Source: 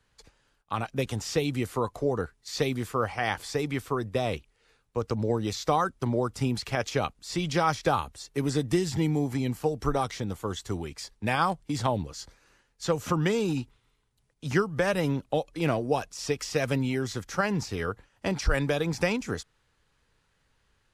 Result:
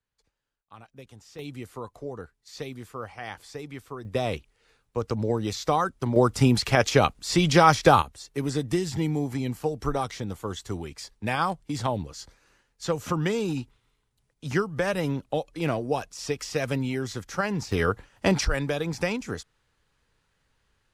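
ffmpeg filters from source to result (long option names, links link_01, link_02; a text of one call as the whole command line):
ffmpeg -i in.wav -af "asetnsamples=nb_out_samples=441:pad=0,asendcmd='1.39 volume volume -9dB;4.05 volume volume 1dB;6.16 volume volume 8dB;8.02 volume volume -0.5dB;17.72 volume volume 7dB;18.45 volume volume -1dB',volume=-17.5dB" out.wav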